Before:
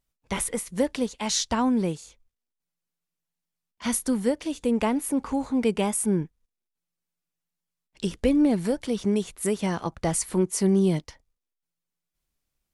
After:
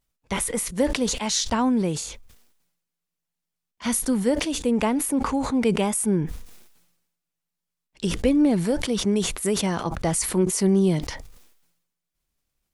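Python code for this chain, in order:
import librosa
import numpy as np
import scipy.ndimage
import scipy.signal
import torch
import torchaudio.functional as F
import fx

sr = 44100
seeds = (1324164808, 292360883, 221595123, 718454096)

y = fx.sustainer(x, sr, db_per_s=61.0)
y = F.gain(torch.from_numpy(y), 1.5).numpy()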